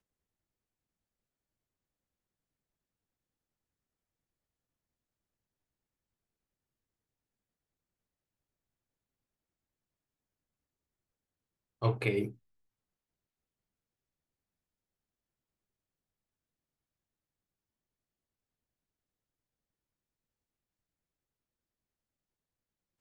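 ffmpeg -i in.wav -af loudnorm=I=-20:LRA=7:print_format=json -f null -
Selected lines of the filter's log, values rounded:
"input_i" : "-33.3",
"input_tp" : "-15.7",
"input_lra" : "3.5",
"input_thresh" : "-43.8",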